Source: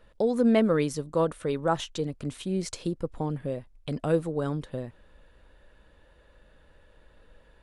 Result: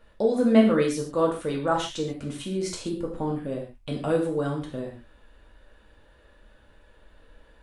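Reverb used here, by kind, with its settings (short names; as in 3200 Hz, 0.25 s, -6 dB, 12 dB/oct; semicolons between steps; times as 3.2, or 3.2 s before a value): non-linear reverb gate 0.17 s falling, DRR -1.5 dB; gain -1 dB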